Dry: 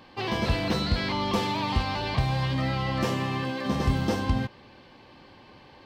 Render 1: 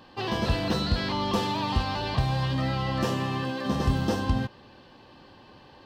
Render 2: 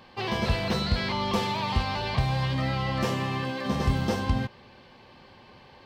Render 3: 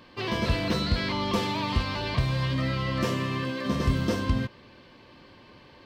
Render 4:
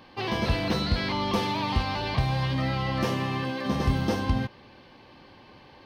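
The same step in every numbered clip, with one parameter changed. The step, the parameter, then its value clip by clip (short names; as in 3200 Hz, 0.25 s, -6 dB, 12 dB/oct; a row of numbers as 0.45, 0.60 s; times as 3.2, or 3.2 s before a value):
notch, frequency: 2200, 300, 800, 7500 Hz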